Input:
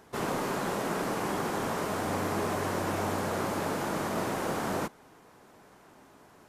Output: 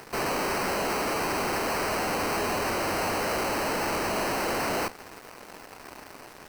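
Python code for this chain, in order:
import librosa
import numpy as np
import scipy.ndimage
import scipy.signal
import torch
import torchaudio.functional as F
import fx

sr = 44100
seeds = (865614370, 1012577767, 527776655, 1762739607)

p1 = fx.peak_eq(x, sr, hz=120.0, db=-14.5, octaves=1.8)
p2 = fx.fuzz(p1, sr, gain_db=48.0, gate_db=-58.0)
p3 = p1 + (p2 * librosa.db_to_amplitude(-11.0))
p4 = fx.sample_hold(p3, sr, seeds[0], rate_hz=3500.0, jitter_pct=0)
p5 = fx.dmg_crackle(p4, sr, seeds[1], per_s=380.0, level_db=-34.0)
y = p5 * librosa.db_to_amplitude(-5.5)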